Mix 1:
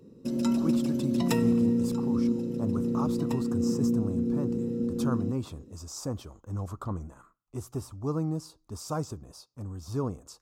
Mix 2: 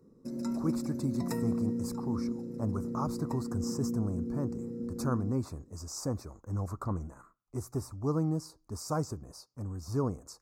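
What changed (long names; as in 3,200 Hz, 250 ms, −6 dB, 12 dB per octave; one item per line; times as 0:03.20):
background −8.0 dB
master: add Butterworth band-reject 3,100 Hz, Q 1.5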